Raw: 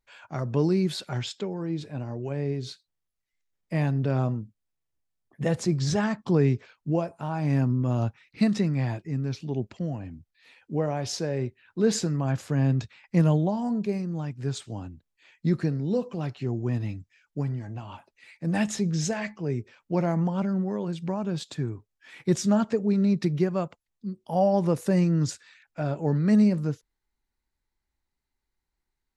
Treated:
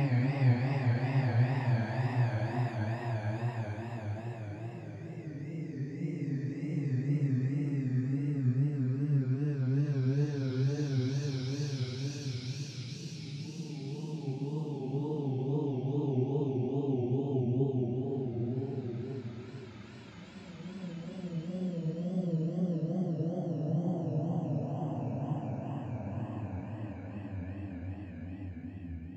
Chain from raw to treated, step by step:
extreme stretch with random phases 22×, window 0.25 s, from 0:08.80
tape wow and flutter 120 cents
level −3 dB

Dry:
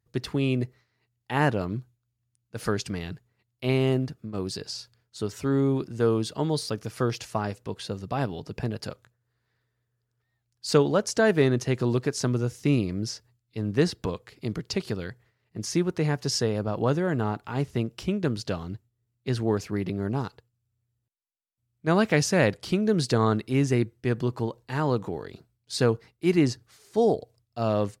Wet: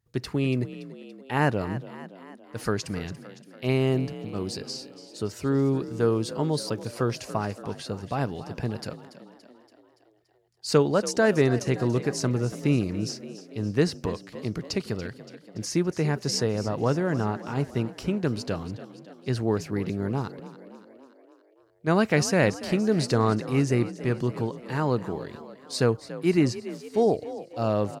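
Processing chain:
echo with shifted repeats 285 ms, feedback 58%, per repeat +42 Hz, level −15 dB
dynamic equaliser 3,400 Hz, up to −6 dB, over −57 dBFS, Q 6.1

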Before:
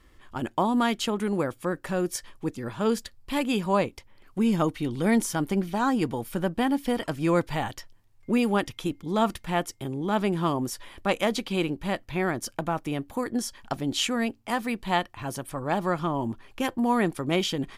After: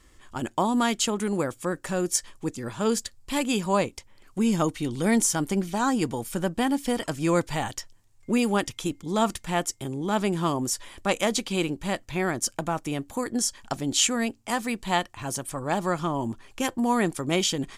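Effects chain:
parametric band 7,400 Hz +11.5 dB 1 octave

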